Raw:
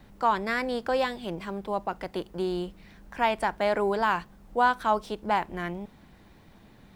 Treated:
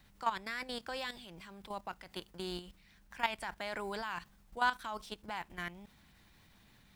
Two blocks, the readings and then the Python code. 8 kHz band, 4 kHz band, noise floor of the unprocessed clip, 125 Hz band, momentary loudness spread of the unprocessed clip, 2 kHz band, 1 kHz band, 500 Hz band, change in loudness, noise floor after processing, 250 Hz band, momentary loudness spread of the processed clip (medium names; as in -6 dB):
no reading, -4.0 dB, -55 dBFS, -12.5 dB, 10 LU, -7.5 dB, -12.0 dB, -16.0 dB, -11.0 dB, -65 dBFS, -14.5 dB, 17 LU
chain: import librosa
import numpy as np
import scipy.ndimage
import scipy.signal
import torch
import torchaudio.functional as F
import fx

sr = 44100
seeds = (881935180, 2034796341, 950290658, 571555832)

y = fx.tone_stack(x, sr, knobs='5-5-5')
y = fx.level_steps(y, sr, step_db=12)
y = y * librosa.db_to_amplitude(8.5)